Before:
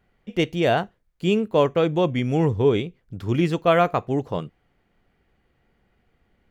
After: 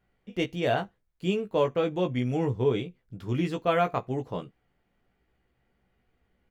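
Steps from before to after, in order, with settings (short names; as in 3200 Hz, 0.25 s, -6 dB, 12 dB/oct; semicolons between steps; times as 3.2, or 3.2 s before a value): doubler 16 ms -5 dB; gain -7.5 dB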